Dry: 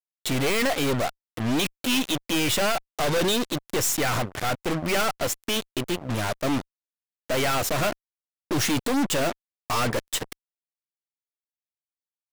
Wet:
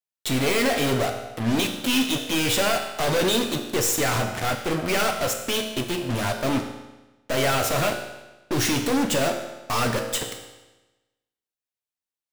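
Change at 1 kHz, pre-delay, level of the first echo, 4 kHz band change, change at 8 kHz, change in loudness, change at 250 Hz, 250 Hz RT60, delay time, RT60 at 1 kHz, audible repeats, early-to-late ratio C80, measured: +1.5 dB, 7 ms, no echo, +2.0 dB, +1.5 dB, +1.5 dB, +1.5 dB, 1.1 s, no echo, 1.1 s, no echo, 8.5 dB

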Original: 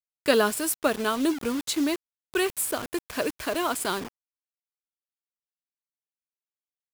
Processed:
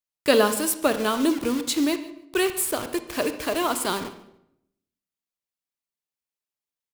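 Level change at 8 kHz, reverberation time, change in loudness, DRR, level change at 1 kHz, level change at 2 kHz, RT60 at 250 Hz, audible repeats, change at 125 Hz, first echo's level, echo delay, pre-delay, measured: +2.5 dB, 0.75 s, +2.5 dB, 9.5 dB, +2.5 dB, +1.0 dB, 0.90 s, 2, +3.0 dB, -20.0 dB, 146 ms, 30 ms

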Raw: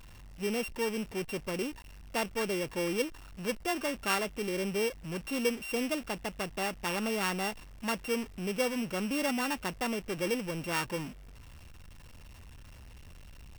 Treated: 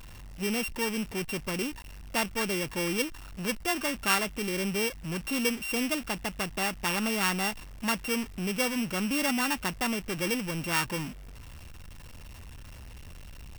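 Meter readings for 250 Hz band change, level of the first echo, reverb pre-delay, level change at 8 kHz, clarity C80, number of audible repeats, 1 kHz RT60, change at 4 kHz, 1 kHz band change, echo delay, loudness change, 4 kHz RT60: +3.0 dB, no echo, no reverb, +6.5 dB, no reverb, no echo, no reverb, +5.5 dB, +3.0 dB, no echo, +3.5 dB, no reverb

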